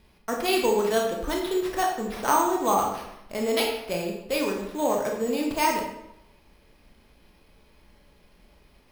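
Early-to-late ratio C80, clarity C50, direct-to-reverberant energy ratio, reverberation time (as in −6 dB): 7.0 dB, 4.0 dB, 0.0 dB, 0.85 s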